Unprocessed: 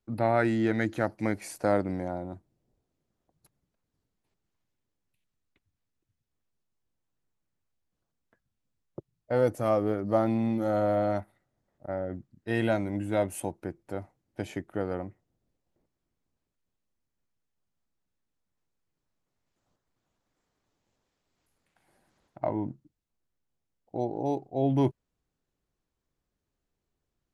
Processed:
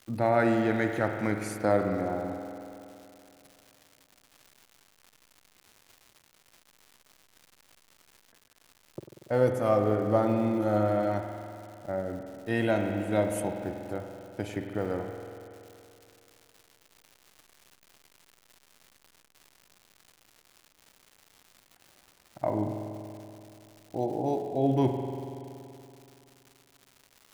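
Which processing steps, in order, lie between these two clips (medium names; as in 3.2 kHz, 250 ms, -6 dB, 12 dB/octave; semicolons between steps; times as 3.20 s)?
spring tank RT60 2.8 s, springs 47 ms, chirp 30 ms, DRR 4 dB; crackle 280 per s -43 dBFS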